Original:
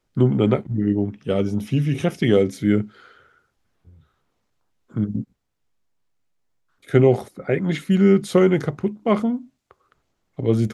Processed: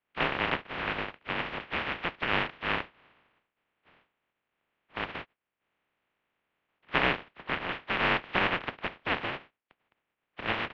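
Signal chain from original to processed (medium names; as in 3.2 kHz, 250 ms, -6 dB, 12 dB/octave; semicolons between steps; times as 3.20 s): spectral contrast reduction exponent 0.1; mistuned SSB -350 Hz 460–3200 Hz; trim -6 dB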